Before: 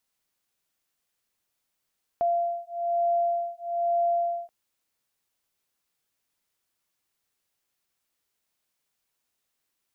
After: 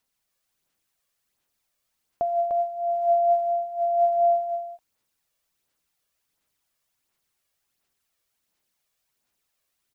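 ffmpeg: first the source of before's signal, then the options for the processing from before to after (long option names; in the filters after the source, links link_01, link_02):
-f lavfi -i "aevalsrc='0.0473*(sin(2*PI*688*t)+sin(2*PI*689.1*t))':duration=2.28:sample_rate=44100"
-filter_complex "[0:a]asplit=2[link_01][link_02];[link_02]aecho=0:1:299:0.631[link_03];[link_01][link_03]amix=inputs=2:normalize=0,aphaser=in_gain=1:out_gain=1:delay=1.8:decay=0.39:speed=1.4:type=sinusoidal"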